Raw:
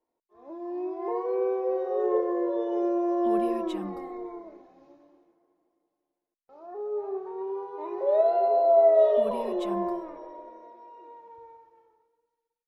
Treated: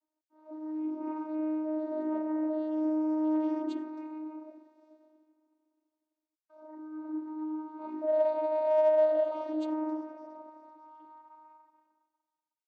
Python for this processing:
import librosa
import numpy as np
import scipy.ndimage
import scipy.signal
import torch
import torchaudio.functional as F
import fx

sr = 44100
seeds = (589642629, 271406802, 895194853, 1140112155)

p1 = fx.low_shelf(x, sr, hz=280.0, db=-10.0)
p2 = 10.0 ** (-26.0 / 20.0) * np.tanh(p1 / 10.0 ** (-26.0 / 20.0))
p3 = p1 + (p2 * librosa.db_to_amplitude(-4.0))
p4 = fx.bass_treble(p3, sr, bass_db=-14, treble_db=8)
p5 = fx.vocoder(p4, sr, bands=16, carrier='saw', carrier_hz=310.0)
y = p5 * librosa.db_to_amplitude(-4.0)